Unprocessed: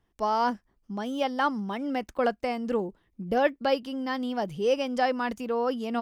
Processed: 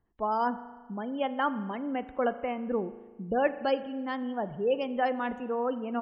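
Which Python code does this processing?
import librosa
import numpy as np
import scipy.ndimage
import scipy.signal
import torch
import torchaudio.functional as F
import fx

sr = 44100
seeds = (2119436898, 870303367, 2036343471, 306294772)

y = fx.wiener(x, sr, points=9)
y = fx.spec_gate(y, sr, threshold_db=-30, keep='strong')
y = fx.rev_spring(y, sr, rt60_s=1.4, pass_ms=(37,), chirp_ms=70, drr_db=13.0)
y = y * 10.0 ** (-2.5 / 20.0)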